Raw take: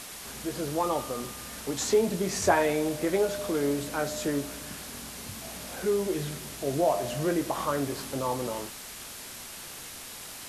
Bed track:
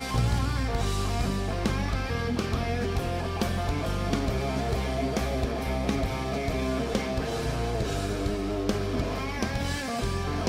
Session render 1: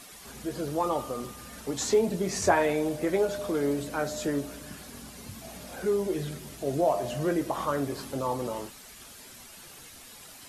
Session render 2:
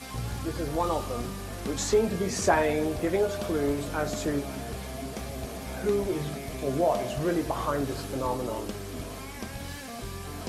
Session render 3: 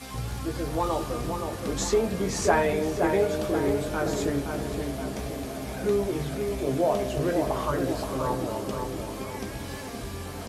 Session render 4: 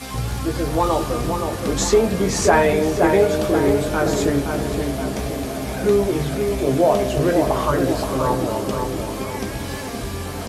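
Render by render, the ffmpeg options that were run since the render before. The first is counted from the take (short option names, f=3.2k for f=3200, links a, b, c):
-af "afftdn=nr=9:nf=-43"
-filter_complex "[1:a]volume=-9dB[a];[0:a][a]amix=inputs=2:normalize=0"
-filter_complex "[0:a]asplit=2[a][b];[b]adelay=15,volume=-11dB[c];[a][c]amix=inputs=2:normalize=0,asplit=2[d][e];[e]adelay=522,lowpass=f=2k:p=1,volume=-5dB,asplit=2[f][g];[g]adelay=522,lowpass=f=2k:p=1,volume=0.55,asplit=2[h][i];[i]adelay=522,lowpass=f=2k:p=1,volume=0.55,asplit=2[j][k];[k]adelay=522,lowpass=f=2k:p=1,volume=0.55,asplit=2[l][m];[m]adelay=522,lowpass=f=2k:p=1,volume=0.55,asplit=2[n][o];[o]adelay=522,lowpass=f=2k:p=1,volume=0.55,asplit=2[p][q];[q]adelay=522,lowpass=f=2k:p=1,volume=0.55[r];[f][h][j][l][n][p][r]amix=inputs=7:normalize=0[s];[d][s]amix=inputs=2:normalize=0"
-af "volume=8dB,alimiter=limit=-3dB:level=0:latency=1"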